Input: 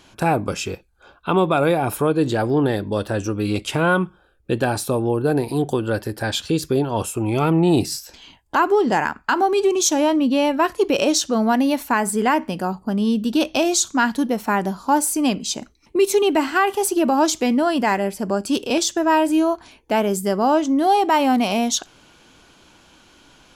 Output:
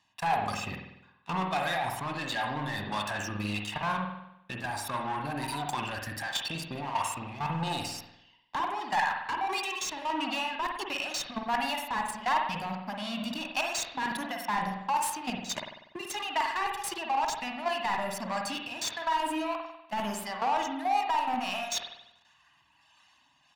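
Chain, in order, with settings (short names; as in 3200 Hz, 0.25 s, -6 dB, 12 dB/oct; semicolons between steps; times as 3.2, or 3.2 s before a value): reverb removal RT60 1.7 s; HPF 73 Hz 12 dB/oct; bell 380 Hz -13 dB 1.5 oct; notch 1500 Hz, Q 15; comb 1.1 ms, depth 99%; level quantiser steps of 21 dB; sample leveller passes 3; reverse; compressor 6:1, threshold -27 dBFS, peak gain reduction 13 dB; reverse; overdrive pedal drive 20 dB, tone 3300 Hz, clips at -13 dBFS; harmonic tremolo 1.5 Hz, depth 50%, crossover 460 Hz; on a send: reverb RT60 0.85 s, pre-delay 48 ms, DRR 2 dB; on the sum: gain -6 dB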